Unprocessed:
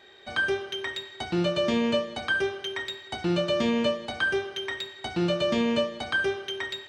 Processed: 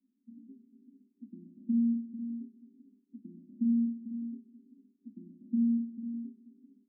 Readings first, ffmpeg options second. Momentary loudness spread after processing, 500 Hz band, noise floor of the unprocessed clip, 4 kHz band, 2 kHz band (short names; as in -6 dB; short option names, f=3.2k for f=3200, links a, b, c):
22 LU, under -35 dB, -47 dBFS, under -40 dB, under -40 dB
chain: -af "asuperpass=centerf=240:order=8:qfactor=3.3,aecho=1:1:445:0.355"